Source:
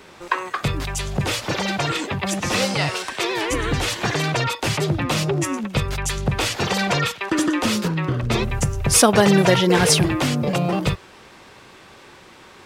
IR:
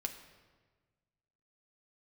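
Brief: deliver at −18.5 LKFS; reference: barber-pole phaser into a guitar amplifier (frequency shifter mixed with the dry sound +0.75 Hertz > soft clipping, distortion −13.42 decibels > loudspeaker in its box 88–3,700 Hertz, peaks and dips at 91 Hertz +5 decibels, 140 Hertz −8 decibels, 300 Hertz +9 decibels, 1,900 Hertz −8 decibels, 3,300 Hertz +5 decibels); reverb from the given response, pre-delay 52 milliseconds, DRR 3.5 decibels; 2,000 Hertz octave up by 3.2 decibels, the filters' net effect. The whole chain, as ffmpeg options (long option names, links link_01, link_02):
-filter_complex "[0:a]equalizer=frequency=2000:width_type=o:gain=8,asplit=2[link_01][link_02];[1:a]atrim=start_sample=2205,adelay=52[link_03];[link_02][link_03]afir=irnorm=-1:irlink=0,volume=-3.5dB[link_04];[link_01][link_04]amix=inputs=2:normalize=0,asplit=2[link_05][link_06];[link_06]afreqshift=0.75[link_07];[link_05][link_07]amix=inputs=2:normalize=1,asoftclip=threshold=-14dB,highpass=88,equalizer=frequency=91:width_type=q:width=4:gain=5,equalizer=frequency=140:width_type=q:width=4:gain=-8,equalizer=frequency=300:width_type=q:width=4:gain=9,equalizer=frequency=1900:width_type=q:width=4:gain=-8,equalizer=frequency=3300:width_type=q:width=4:gain=5,lowpass=frequency=3700:width=0.5412,lowpass=frequency=3700:width=1.3066,volume=4dB"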